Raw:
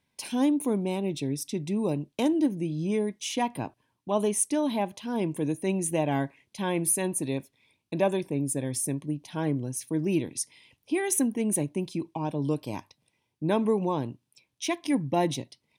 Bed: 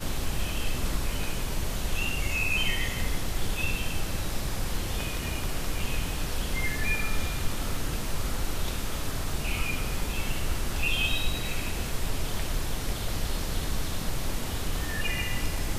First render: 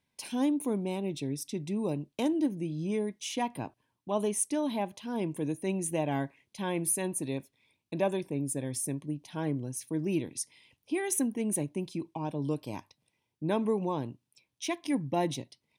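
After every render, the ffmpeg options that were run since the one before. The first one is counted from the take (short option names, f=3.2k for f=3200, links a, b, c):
-af "volume=-4dB"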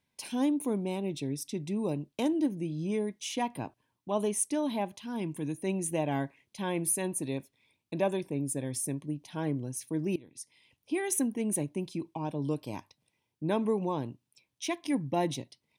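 -filter_complex "[0:a]asettb=1/sr,asplit=3[a][b][c];[a]atrim=end=4.964[d];[b]atrim=start=4.96:end=5.58,asetpts=PTS-STARTPTS,afade=t=in:d=0.004:c=qsin,afade=t=out:st=0.616:d=0.004:c=qsin,equalizer=f=540:t=o:w=1:g=-7.5[e];[c]atrim=start=5.576[f];[d][e]acrossfade=d=0.004:c1=hsin:c2=qsin[g];[g][f]acrossfade=d=0.004:c1=qsin:c2=hsin,asplit=2[h][i];[h]atrim=end=10.16,asetpts=PTS-STARTPTS,afade=t=out:st=10.156:d=0.004:c=hsin:silence=0.0794328[j];[i]atrim=start=10.16,asetpts=PTS-STARTPTS,afade=t=in:d=0.77:silence=0.0794328[k];[j][k]concat=n=2:v=0:a=1"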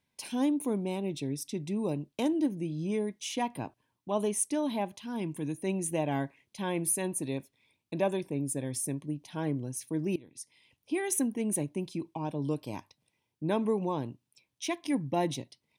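-af anull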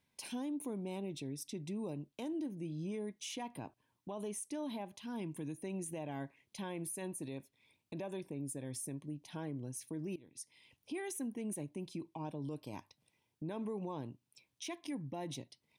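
-af "acompressor=threshold=-50dB:ratio=1.5,alimiter=level_in=9.5dB:limit=-24dB:level=0:latency=1:release=45,volume=-9.5dB"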